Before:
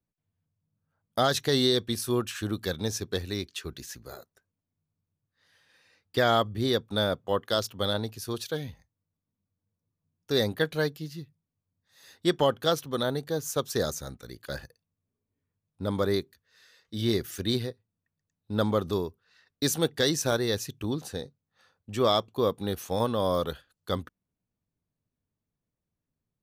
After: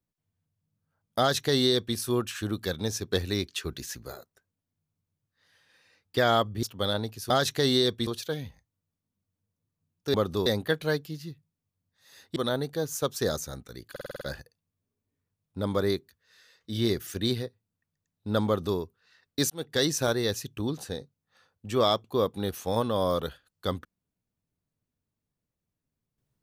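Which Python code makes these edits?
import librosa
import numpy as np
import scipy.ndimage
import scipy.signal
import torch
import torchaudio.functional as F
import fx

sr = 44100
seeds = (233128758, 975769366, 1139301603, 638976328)

y = fx.edit(x, sr, fx.duplicate(start_s=1.19, length_s=0.77, to_s=8.3),
    fx.clip_gain(start_s=3.12, length_s=1.0, db=3.5),
    fx.cut(start_s=6.63, length_s=1.0),
    fx.cut(start_s=12.27, length_s=0.63),
    fx.stutter(start_s=14.45, slice_s=0.05, count=7),
    fx.duplicate(start_s=18.7, length_s=0.32, to_s=10.37),
    fx.fade_in_span(start_s=19.74, length_s=0.31), tone=tone)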